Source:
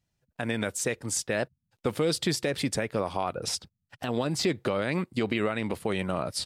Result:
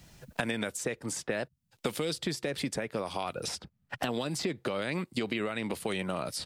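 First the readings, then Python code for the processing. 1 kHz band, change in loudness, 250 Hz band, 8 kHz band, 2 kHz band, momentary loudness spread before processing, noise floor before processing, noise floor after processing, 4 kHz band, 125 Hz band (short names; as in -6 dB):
-3.5 dB, -4.5 dB, -4.5 dB, -5.5 dB, -2.5 dB, 6 LU, -82 dBFS, -75 dBFS, -3.5 dB, -6.0 dB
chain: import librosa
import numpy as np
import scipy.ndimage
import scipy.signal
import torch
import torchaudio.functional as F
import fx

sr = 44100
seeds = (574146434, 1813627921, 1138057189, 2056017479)

y = fx.peak_eq(x, sr, hz=97.0, db=-5.5, octaves=0.56)
y = fx.band_squash(y, sr, depth_pct=100)
y = y * 10.0 ** (-5.0 / 20.0)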